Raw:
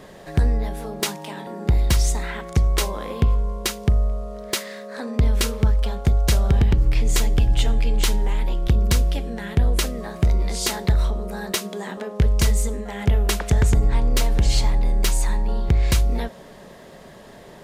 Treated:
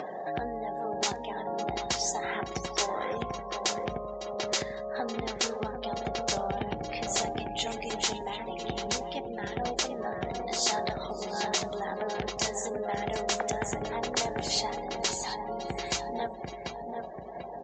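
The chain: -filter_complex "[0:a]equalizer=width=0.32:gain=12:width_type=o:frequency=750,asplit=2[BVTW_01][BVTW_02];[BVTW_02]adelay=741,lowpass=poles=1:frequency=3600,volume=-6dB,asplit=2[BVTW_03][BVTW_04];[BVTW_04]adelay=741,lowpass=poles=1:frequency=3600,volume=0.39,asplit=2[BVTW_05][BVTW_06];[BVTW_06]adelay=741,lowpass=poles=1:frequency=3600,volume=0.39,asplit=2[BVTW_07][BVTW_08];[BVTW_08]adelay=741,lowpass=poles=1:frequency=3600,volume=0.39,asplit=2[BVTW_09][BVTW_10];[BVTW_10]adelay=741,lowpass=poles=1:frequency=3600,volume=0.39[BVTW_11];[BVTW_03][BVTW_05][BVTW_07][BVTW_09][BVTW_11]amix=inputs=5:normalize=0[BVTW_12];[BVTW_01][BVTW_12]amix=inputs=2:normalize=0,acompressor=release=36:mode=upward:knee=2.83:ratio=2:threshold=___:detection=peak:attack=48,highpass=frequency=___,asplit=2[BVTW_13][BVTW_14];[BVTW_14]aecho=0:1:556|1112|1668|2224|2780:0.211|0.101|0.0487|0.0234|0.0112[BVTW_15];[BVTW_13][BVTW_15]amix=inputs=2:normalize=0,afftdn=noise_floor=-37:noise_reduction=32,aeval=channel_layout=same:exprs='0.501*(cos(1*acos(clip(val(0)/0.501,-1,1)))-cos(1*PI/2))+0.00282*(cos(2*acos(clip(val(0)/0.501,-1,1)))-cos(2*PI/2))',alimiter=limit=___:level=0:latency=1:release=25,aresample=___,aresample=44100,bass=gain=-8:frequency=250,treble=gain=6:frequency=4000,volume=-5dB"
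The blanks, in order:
-26dB, 160, -11dB, 16000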